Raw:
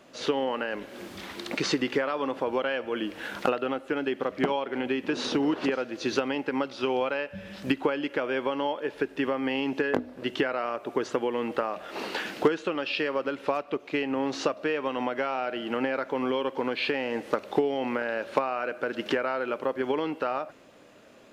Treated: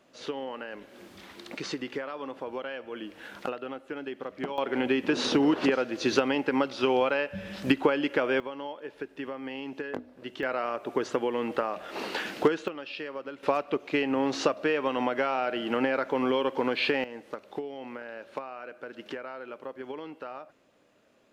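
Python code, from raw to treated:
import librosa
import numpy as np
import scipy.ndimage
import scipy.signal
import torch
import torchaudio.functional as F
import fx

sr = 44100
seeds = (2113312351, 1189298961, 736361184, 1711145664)

y = fx.gain(x, sr, db=fx.steps((0.0, -8.0), (4.58, 2.5), (8.4, -9.0), (10.43, -0.5), (12.68, -9.0), (13.43, 1.5), (17.04, -11.0)))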